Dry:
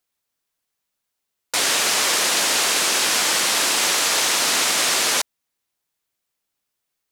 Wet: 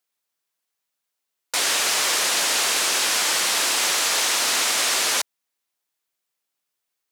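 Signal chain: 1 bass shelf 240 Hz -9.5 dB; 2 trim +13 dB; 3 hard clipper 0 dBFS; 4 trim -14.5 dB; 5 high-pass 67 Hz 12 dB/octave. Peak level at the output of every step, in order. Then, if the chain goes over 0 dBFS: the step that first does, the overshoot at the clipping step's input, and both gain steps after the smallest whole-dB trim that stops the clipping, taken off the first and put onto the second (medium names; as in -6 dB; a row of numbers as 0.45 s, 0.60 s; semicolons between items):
-7.0 dBFS, +6.0 dBFS, 0.0 dBFS, -14.5 dBFS, -14.0 dBFS; step 2, 6.0 dB; step 2 +7 dB, step 4 -8.5 dB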